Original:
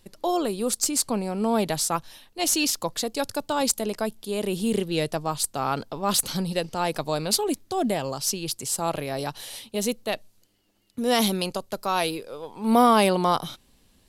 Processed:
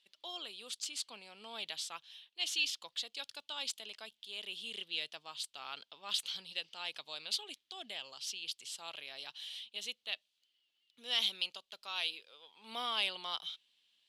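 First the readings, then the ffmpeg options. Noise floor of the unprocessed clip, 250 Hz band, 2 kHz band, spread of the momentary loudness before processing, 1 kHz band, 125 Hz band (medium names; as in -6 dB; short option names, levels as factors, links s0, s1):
-62 dBFS, -34.5 dB, -8.5 dB, 9 LU, -22.0 dB, under -35 dB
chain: -af "bandpass=f=3200:t=q:w=4:csg=0"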